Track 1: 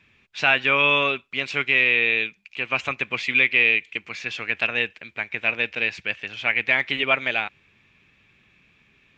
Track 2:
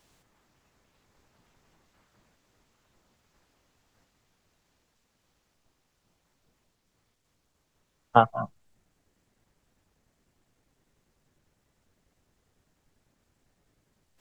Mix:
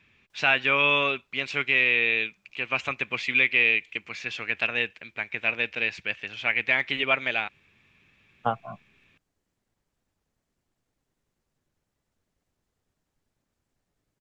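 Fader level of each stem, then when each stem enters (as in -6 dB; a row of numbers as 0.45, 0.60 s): -3.0, -8.0 dB; 0.00, 0.30 s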